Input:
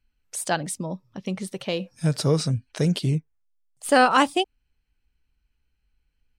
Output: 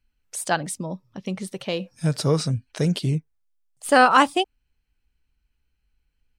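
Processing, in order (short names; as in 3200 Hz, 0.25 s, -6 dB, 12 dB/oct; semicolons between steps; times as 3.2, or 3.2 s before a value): dynamic EQ 1200 Hz, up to +4 dB, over -32 dBFS, Q 1.1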